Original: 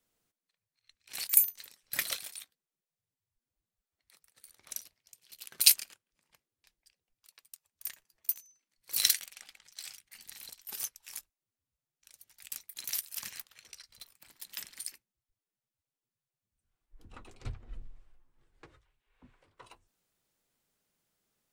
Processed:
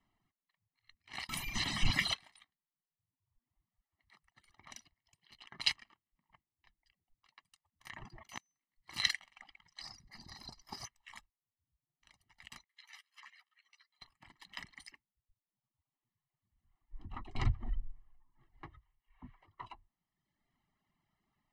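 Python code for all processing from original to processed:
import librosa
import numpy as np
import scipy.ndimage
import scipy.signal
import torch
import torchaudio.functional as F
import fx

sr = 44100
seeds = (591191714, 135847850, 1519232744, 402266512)

y = fx.chain(x, sr, fx.zero_step(step_db=-22.0),
    fx.band_shelf(hz=830.0, db=-9.0, octaves=2.7), at=(1.29, 2.14))
y = fx.chain(y, sr, fx.air_absorb(metres=61.0),
    fx.hum_notches(base_hz=50, count=6), at=(5.35, 7.4))
y = fx.chain(y, sr, fx.highpass(hz=220.0, slope=6),
    fx.tilt_eq(slope=-2.5),
    fx.sustainer(db_per_s=26.0), at=(7.9, 8.38))
y = fx.chain(y, sr, fx.curve_eq(hz=(530.0, 1900.0, 3200.0, 4700.0, 7600.0, 13000.0), db=(0, -11, -20, 8, -7, -2)),
    fx.power_curve(exponent=0.7), at=(9.81, 10.86))
y = fx.chain(y, sr, fx.highpass(hz=1500.0, slope=12),
    fx.high_shelf(hz=2300.0, db=-10.0),
    fx.ensemble(), at=(12.64, 14.02))
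y = fx.chain(y, sr, fx.high_shelf(hz=3200.0, db=8.0),
    fx.pre_swell(db_per_s=52.0), at=(17.35, 17.76))
y = scipy.signal.sosfilt(scipy.signal.butter(2, 2200.0, 'lowpass', fs=sr, output='sos'), y)
y = fx.dereverb_blind(y, sr, rt60_s=1.1)
y = y + 1.0 * np.pad(y, (int(1.0 * sr / 1000.0), 0))[:len(y)]
y = y * 10.0 ** (3.0 / 20.0)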